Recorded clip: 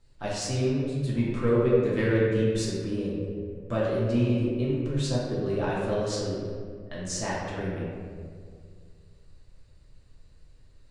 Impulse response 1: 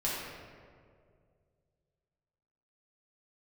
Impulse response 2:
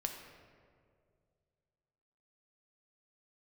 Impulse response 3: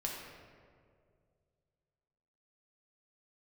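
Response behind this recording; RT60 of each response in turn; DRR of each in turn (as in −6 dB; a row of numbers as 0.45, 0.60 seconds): 1; 2.1, 2.2, 2.2 seconds; −7.5, 3.0, −2.5 decibels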